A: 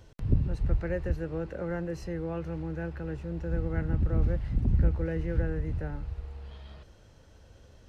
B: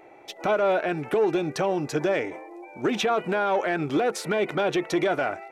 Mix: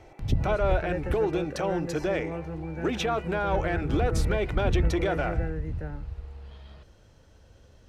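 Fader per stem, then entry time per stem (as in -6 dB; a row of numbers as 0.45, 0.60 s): -0.5, -4.0 dB; 0.00, 0.00 s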